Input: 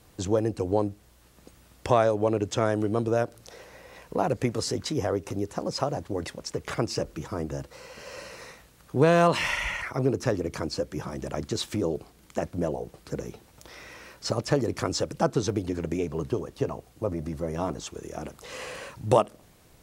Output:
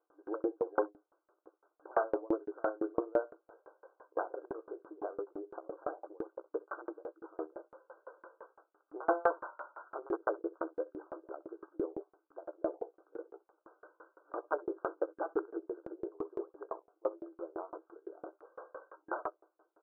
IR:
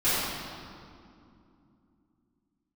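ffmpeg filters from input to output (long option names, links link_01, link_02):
-filter_complex "[0:a]asplit=2[link_01][link_02];[link_02]adelay=15,volume=-7dB[link_03];[link_01][link_03]amix=inputs=2:normalize=0,aeval=exprs='(mod(3.98*val(0)+1,2)-1)/3.98':channel_layout=same,asplit=2[link_04][link_05];[link_05]aecho=0:1:64|74:0.355|0.141[link_06];[link_04][link_06]amix=inputs=2:normalize=0,afftfilt=real='re*between(b*sr/4096,300,1600)':imag='im*between(b*sr/4096,300,1600)':win_size=4096:overlap=0.75,aeval=exprs='val(0)*pow(10,-33*if(lt(mod(5.9*n/s,1),2*abs(5.9)/1000),1-mod(5.9*n/s,1)/(2*abs(5.9)/1000),(mod(5.9*n/s,1)-2*abs(5.9)/1000)/(1-2*abs(5.9)/1000))/20)':channel_layout=same,volume=-1.5dB"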